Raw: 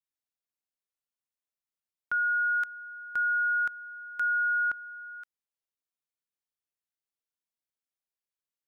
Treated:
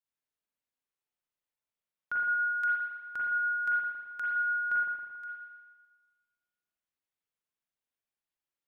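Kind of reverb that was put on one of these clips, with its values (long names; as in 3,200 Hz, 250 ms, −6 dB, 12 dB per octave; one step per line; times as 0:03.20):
spring reverb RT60 1.4 s, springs 39/54 ms, chirp 65 ms, DRR −5.5 dB
level −4.5 dB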